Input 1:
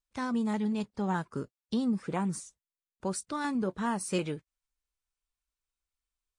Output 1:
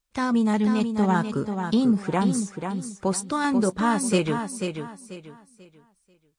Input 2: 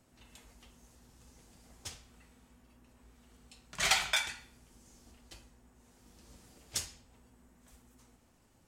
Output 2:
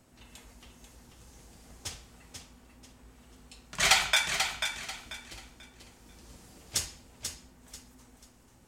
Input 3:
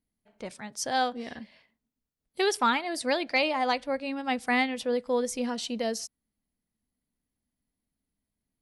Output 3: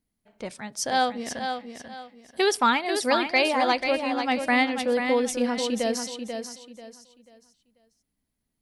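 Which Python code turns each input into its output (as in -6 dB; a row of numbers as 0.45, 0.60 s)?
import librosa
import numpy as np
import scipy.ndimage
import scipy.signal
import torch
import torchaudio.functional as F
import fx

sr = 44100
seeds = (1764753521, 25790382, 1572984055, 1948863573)

y = fx.echo_feedback(x, sr, ms=489, feedback_pct=29, wet_db=-7)
y = y * 10.0 ** (-9 / 20.0) / np.max(np.abs(y))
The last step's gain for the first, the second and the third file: +8.5, +5.0, +3.5 dB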